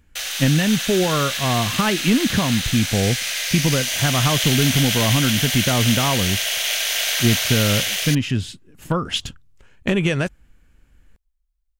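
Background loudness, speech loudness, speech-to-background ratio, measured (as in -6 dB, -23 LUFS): -21.0 LUFS, -21.0 LUFS, 0.0 dB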